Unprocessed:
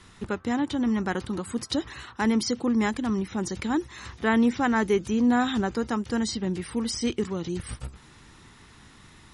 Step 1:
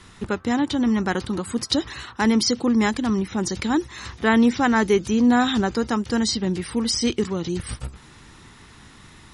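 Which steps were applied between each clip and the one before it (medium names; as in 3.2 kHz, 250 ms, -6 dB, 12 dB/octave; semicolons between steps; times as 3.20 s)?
dynamic bell 4.7 kHz, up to +5 dB, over -49 dBFS, Q 1.4; trim +4.5 dB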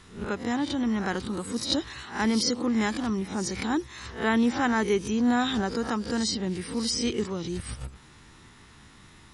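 reverse spectral sustain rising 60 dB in 0.36 s; trim -6.5 dB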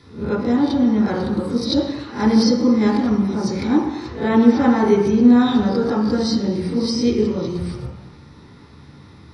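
reverberation RT60 1.0 s, pre-delay 3 ms, DRR -5 dB; trim -7 dB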